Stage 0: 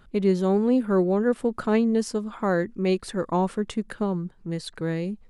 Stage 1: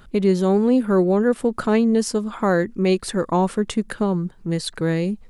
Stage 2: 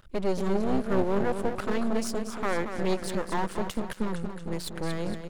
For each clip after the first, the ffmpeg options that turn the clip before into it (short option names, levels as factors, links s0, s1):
-filter_complex "[0:a]asplit=2[s0][s1];[s1]alimiter=limit=0.106:level=0:latency=1:release=302,volume=1.19[s2];[s0][s2]amix=inputs=2:normalize=0,highshelf=f=5600:g=5"
-filter_complex "[0:a]asplit=2[s0][s1];[s1]aecho=0:1:231|462|693|924|1155|1386:0.376|0.203|0.11|0.0592|0.032|0.0173[s2];[s0][s2]amix=inputs=2:normalize=0,aeval=exprs='max(val(0),0)':c=same,volume=0.596"